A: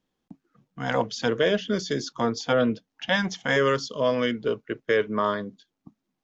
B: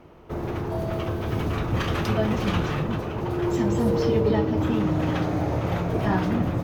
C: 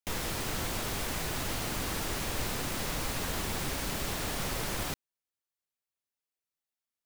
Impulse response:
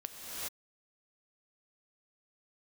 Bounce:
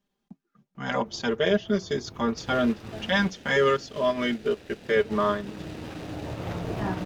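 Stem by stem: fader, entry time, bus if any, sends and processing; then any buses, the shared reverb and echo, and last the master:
-3.0 dB, 0.00 s, no send, comb 5 ms, depth 93%
-6.0 dB, 0.75 s, muted 3.30–4.95 s, no send, auto duck -9 dB, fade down 1.00 s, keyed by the first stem
0.0 dB, 2.30 s, no send, median filter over 41 samples; frequency weighting D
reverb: none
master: transient shaper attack -2 dB, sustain -7 dB

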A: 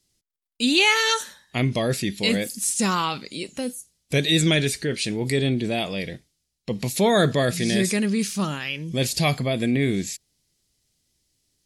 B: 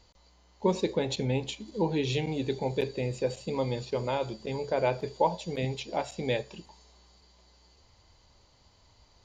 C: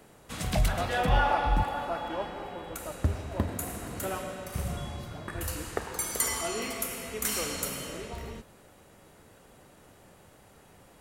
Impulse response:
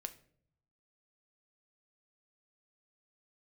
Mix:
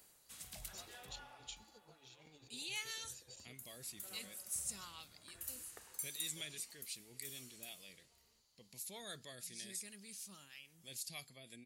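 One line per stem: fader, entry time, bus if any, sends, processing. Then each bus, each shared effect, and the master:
-14.5 dB, 1.90 s, no send, harmonic tremolo 6.3 Hz, depth 50%, crossover 450 Hz
-11.0 dB, 0.00 s, muted 3.53–6.36 s, no send, compressor with a negative ratio -34 dBFS, ratio -0.5
0.83 s -0.5 dB -> 1.58 s -9.5 dB, 0.00 s, no send, auto duck -11 dB, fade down 0.45 s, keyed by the second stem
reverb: none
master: pre-emphasis filter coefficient 0.9

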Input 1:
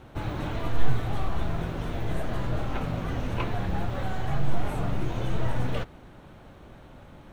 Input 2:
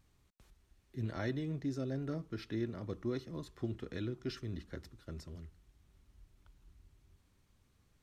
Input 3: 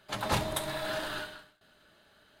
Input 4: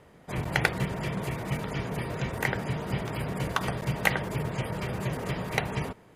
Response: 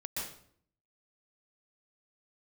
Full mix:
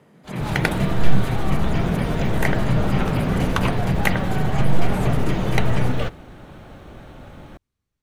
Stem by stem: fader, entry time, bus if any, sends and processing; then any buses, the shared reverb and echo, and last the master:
+2.0 dB, 0.25 s, no send, band-stop 980 Hz, Q 15
-15.0 dB, 0.00 s, no send, none
-9.0 dB, 0.15 s, no send, none
-1.0 dB, 0.00 s, no send, high-pass 110 Hz 24 dB/octave; peaking EQ 200 Hz +8 dB 1.2 oct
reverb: none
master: level rider gain up to 5.5 dB

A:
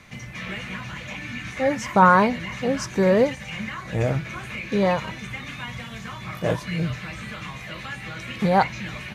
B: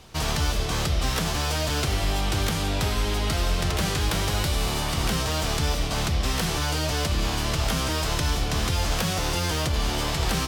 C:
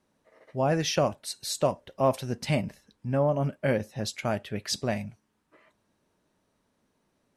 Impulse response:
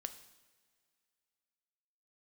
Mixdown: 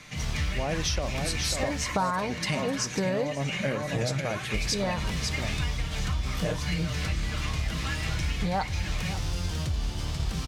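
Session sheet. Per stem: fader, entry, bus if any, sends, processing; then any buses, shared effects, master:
-4.0 dB, 0.00 s, send -7 dB, echo send -21 dB, comb 6.6 ms, depth 40%
-8.5 dB, 0.00 s, muted 1.84–4.54 s, no send, echo send -7.5 dB, expander -20 dBFS; tone controls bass +12 dB, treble -4 dB
0.0 dB, 0.00 s, no send, echo send -7.5 dB, none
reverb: on, pre-delay 3 ms
echo: delay 546 ms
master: peaking EQ 5.9 kHz +8 dB 2.1 oct; compression 6:1, threshold -25 dBFS, peak gain reduction 15 dB

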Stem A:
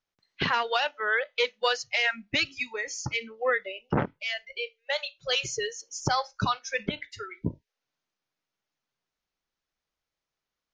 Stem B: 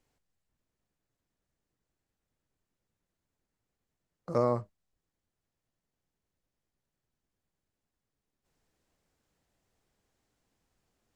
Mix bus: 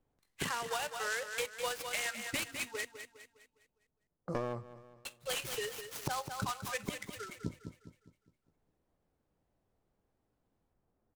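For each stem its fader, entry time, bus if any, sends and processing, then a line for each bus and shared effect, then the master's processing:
-6.5 dB, 0.00 s, muted 2.85–5.05 s, no send, echo send -10.5 dB, delay time shaken by noise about 4.9 kHz, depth 0.044 ms
+0.5 dB, 0.00 s, no send, echo send -23.5 dB, one-sided wavefolder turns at -27.5 dBFS; level-controlled noise filter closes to 970 Hz, open at -41.5 dBFS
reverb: none
echo: feedback delay 204 ms, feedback 42%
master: compression 6:1, threshold -32 dBFS, peak gain reduction 10.5 dB

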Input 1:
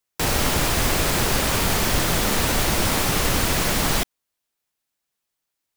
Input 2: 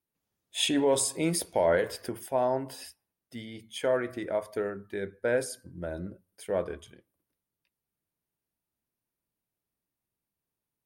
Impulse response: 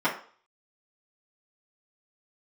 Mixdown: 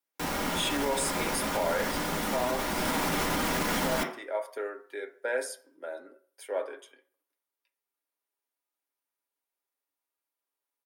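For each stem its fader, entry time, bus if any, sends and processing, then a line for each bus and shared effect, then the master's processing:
2.70 s -15.5 dB -> 3.01 s -9 dB, 0.00 s, send -8 dB, none
-2.5 dB, 0.00 s, send -16 dB, Bessel high-pass 570 Hz, order 8; comb 7.3 ms, depth 41%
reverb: on, RT60 0.45 s, pre-delay 3 ms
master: peak limiter -19 dBFS, peak gain reduction 7 dB

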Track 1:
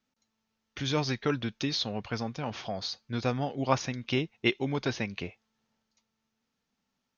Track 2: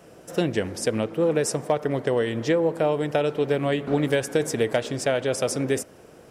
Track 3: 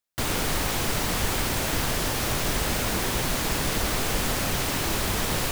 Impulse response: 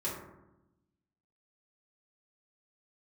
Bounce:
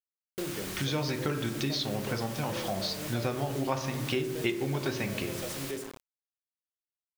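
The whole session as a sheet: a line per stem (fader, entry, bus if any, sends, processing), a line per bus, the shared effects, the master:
+3.0 dB, 0.00 s, send -7 dB, none
-15.5 dB, 0.00 s, send -6.5 dB, high-pass 72 Hz 12 dB/octave; rotary cabinet horn 0.85 Hz
-20.0 dB, 0.20 s, send -13.5 dB, tilt shelf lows -7.5 dB, about 640 Hz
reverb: on, RT60 0.95 s, pre-delay 3 ms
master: bit crusher 7-bit; compression 3:1, threshold -30 dBFS, peak gain reduction 12.5 dB

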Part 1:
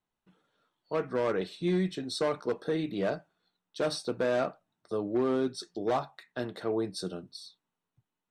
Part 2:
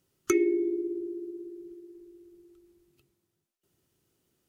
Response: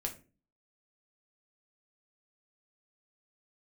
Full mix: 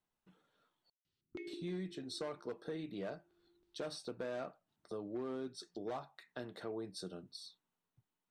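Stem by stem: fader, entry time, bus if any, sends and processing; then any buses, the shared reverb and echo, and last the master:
-3.0 dB, 0.00 s, muted 0.90–1.47 s, no send, none
-11.0 dB, 1.05 s, no send, peaking EQ 520 Hz -10.5 dB 2.1 oct; LFO low-pass square 3.1 Hz 280–4000 Hz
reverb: none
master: compression 2:1, threshold -47 dBFS, peak gain reduction 11 dB

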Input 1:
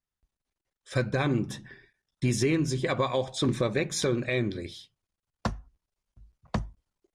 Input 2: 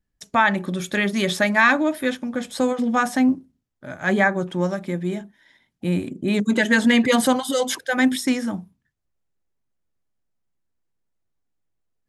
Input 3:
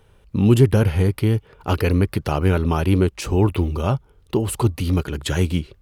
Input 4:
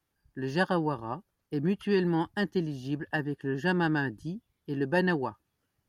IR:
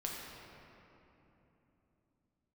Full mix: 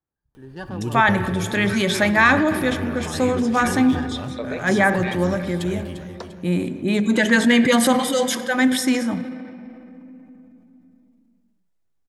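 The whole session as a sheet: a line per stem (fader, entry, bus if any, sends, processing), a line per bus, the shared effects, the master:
-7.0 dB, 0.75 s, send -11 dB, no echo send, LFO high-pass saw up 0.55 Hz 460–3800 Hz
-0.5 dB, 0.60 s, send -10.5 dB, no echo send, none
-13.5 dB, 0.35 s, no send, echo send -9.5 dB, gate with hold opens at -43 dBFS; upward compressor, threshold -18 dBFS
-9.5 dB, 0.00 s, send -9.5 dB, no echo send, local Wiener filter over 15 samples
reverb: on, RT60 3.3 s, pre-delay 6 ms
echo: feedback delay 347 ms, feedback 42%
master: transient shaper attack -1 dB, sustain +4 dB

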